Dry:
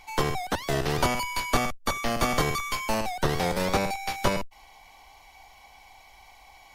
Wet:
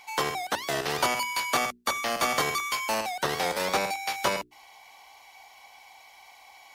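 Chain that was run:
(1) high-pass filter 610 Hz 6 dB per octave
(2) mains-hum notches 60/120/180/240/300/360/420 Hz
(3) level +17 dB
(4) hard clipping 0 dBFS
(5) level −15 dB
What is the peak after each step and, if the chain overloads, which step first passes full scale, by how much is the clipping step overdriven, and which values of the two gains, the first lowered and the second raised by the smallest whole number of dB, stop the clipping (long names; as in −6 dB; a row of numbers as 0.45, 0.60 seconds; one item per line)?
−12.5, −12.5, +4.5, 0.0, −15.0 dBFS
step 3, 4.5 dB
step 3 +12 dB, step 5 −10 dB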